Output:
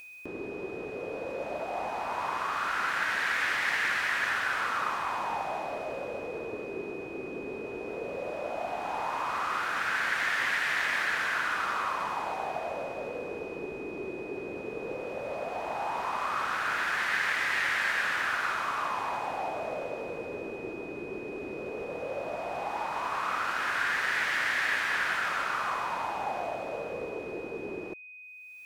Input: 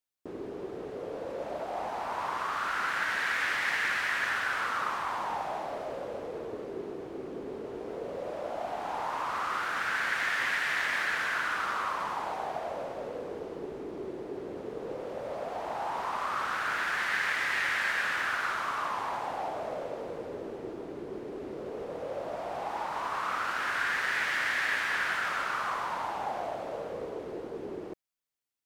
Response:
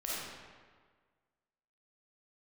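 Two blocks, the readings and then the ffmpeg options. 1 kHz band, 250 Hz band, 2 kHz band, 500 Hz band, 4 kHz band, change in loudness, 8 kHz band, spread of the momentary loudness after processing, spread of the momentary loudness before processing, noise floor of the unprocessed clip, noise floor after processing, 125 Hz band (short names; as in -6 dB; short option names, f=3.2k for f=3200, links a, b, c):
+1.0 dB, +1.0 dB, +1.0 dB, +1.0 dB, +1.0 dB, +1.0 dB, +1.0 dB, 11 LU, 12 LU, -42 dBFS, -40 dBFS, +1.0 dB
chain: -af "acompressor=mode=upward:threshold=-43dB:ratio=2.5,aeval=exprs='val(0)+0.00501*sin(2*PI*2500*n/s)':c=same,volume=1dB"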